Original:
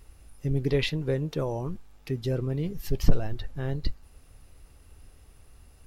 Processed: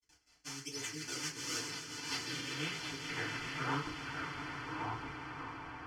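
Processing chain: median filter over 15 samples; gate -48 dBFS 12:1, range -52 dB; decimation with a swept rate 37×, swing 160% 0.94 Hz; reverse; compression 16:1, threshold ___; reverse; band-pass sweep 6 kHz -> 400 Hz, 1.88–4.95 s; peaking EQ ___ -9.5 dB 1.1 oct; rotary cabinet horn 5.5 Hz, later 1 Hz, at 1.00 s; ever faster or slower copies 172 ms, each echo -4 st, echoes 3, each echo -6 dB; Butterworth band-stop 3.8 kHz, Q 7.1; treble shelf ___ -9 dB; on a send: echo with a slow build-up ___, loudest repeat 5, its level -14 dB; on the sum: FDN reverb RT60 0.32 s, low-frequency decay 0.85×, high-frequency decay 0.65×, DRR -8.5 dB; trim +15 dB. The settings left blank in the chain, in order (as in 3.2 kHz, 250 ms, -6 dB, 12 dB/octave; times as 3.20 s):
-31 dBFS, 630 Hz, 2.4 kHz, 136 ms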